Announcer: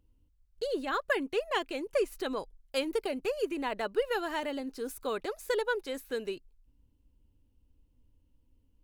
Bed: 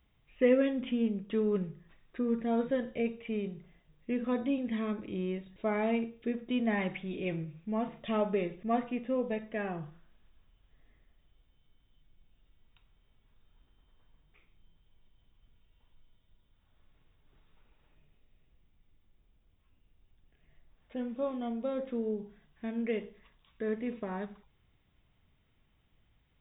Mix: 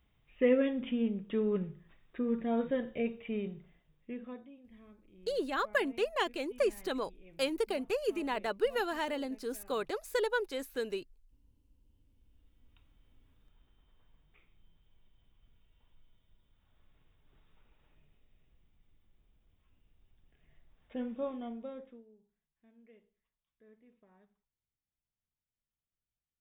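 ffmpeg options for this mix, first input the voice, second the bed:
ffmpeg -i stem1.wav -i stem2.wav -filter_complex "[0:a]adelay=4650,volume=-1dB[link_01];[1:a]volume=21dB,afade=type=out:start_time=3.51:duration=0.99:silence=0.0794328,afade=type=in:start_time=11.81:duration=1.12:silence=0.0749894,afade=type=out:start_time=21.03:duration=1.02:silence=0.0446684[link_02];[link_01][link_02]amix=inputs=2:normalize=0" out.wav

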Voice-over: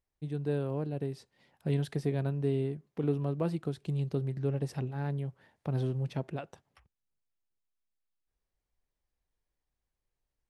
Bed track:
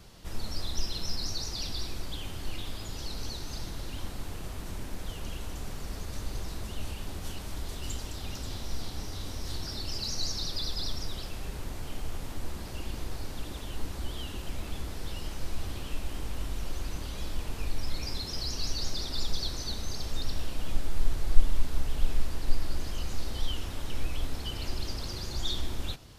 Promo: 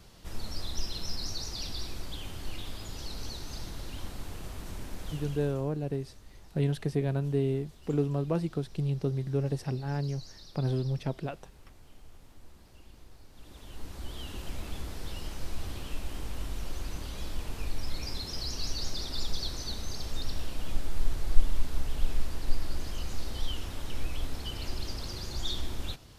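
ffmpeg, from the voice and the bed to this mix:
ffmpeg -i stem1.wav -i stem2.wav -filter_complex "[0:a]adelay=4900,volume=2dB[link_01];[1:a]volume=13.5dB,afade=type=out:start_time=5.11:duration=0.59:silence=0.177828,afade=type=in:start_time=13.31:duration=1.11:silence=0.16788[link_02];[link_01][link_02]amix=inputs=2:normalize=0" out.wav

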